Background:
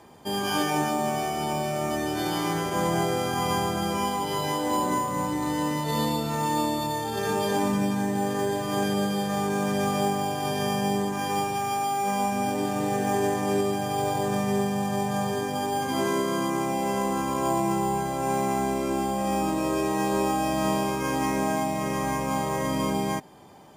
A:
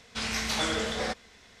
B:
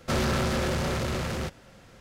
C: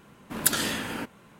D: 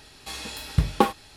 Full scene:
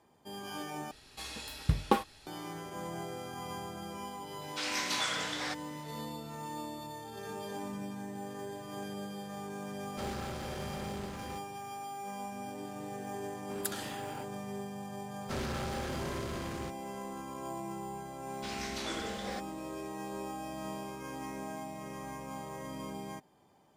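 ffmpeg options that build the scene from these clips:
-filter_complex "[1:a]asplit=2[s0][s1];[2:a]asplit=2[s2][s3];[0:a]volume=0.168[s4];[s0]highpass=860[s5];[s2]aeval=exprs='val(0)*gte(abs(val(0)),0.00531)':c=same[s6];[3:a]equalizer=f=810:t=o:w=0.77:g=5.5[s7];[s4]asplit=2[s8][s9];[s8]atrim=end=0.914[s10];[4:a]atrim=end=1.36,asetpts=PTS-STARTPTS,volume=0.447[s11];[s9]atrim=start=2.266[s12];[s5]atrim=end=1.6,asetpts=PTS-STARTPTS,volume=0.708,afade=t=in:d=0.004:c=hsin,afade=t=out:st=1.596:d=0.004:c=hsin,adelay=194481S[s13];[s6]atrim=end=2,asetpts=PTS-STARTPTS,volume=0.178,afade=t=in:d=0.004:c=hsin,afade=t=out:st=1.996:d=0.004:c=hsin,adelay=9890[s14];[s7]atrim=end=1.39,asetpts=PTS-STARTPTS,volume=0.188,afade=t=in:d=0.004:c=hsin,afade=t=out:st=1.386:d=0.004:c=hsin,adelay=13190[s15];[s3]atrim=end=2,asetpts=PTS-STARTPTS,volume=0.282,afade=t=in:d=0.004:c=hsin,afade=t=out:st=1.996:d=0.004:c=hsin,adelay=15210[s16];[s1]atrim=end=1.6,asetpts=PTS-STARTPTS,volume=0.299,afade=t=in:d=0.004:c=hsin,afade=t=out:st=1.596:d=0.004:c=hsin,adelay=18270[s17];[s10][s11]acrossfade=d=0.004:c1=hsin:c2=hsin[s18];[s18][s12]acrossfade=d=0.004:c1=hsin:c2=hsin[s19];[s19][s13][s14][s15][s16][s17]amix=inputs=6:normalize=0"

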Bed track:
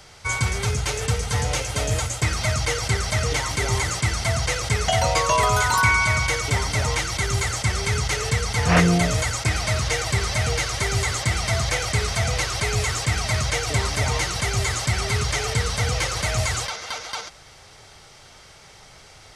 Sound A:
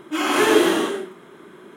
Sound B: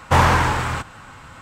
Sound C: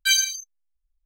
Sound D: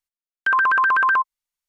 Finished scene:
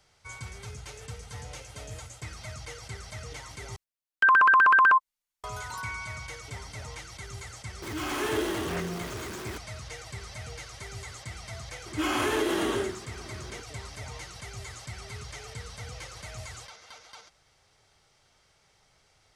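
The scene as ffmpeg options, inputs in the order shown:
-filter_complex "[1:a]asplit=2[s0][s1];[0:a]volume=0.126[s2];[s0]aeval=exprs='val(0)+0.5*0.119*sgn(val(0))':c=same[s3];[s1]acompressor=threshold=0.0891:ratio=6:attack=3.2:release=140:knee=1:detection=peak[s4];[s2]asplit=2[s5][s6];[s5]atrim=end=3.764[s7];[4:a]atrim=end=1.68,asetpts=PTS-STARTPTS,volume=0.891[s8];[s6]atrim=start=5.436[s9];[s3]atrim=end=1.76,asetpts=PTS-STARTPTS,volume=0.168,afade=t=in:d=0.004:c=hsin,afade=t=out:st=1.756:d=0.004:c=hsin,adelay=7820[s10];[s4]atrim=end=1.76,asetpts=PTS-STARTPTS,volume=0.75,afade=t=in:d=0.004:c=hsin,afade=t=out:st=1.756:d=0.004:c=hsin,adelay=523026S[s11];[s7][s8]acrossfade=d=0.004:c1=hsin:c2=hsin[s12];[s12][s9]acrossfade=d=0.004:c1=hsin:c2=hsin[s13];[s13][s10][s11]amix=inputs=3:normalize=0"

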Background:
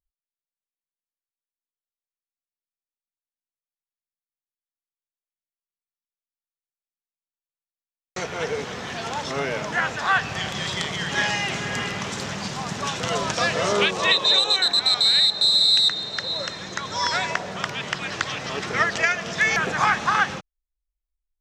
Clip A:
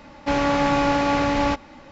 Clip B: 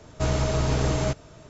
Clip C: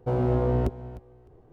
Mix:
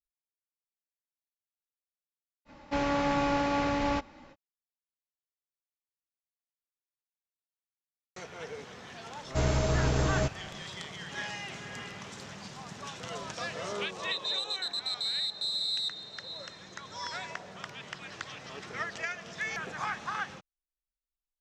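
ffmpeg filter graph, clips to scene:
-filter_complex "[0:a]volume=0.188[s0];[2:a]dynaudnorm=f=100:g=3:m=3.76[s1];[1:a]atrim=end=1.91,asetpts=PTS-STARTPTS,volume=0.398,afade=t=in:d=0.05,afade=t=out:st=1.86:d=0.05,adelay=2450[s2];[s1]atrim=end=1.49,asetpts=PTS-STARTPTS,volume=0.224,afade=t=in:d=0.004:c=hsin,afade=t=out:st=1.486:d=0.004:c=hsin,adelay=9150[s3];[s0][s2][s3]amix=inputs=3:normalize=0"

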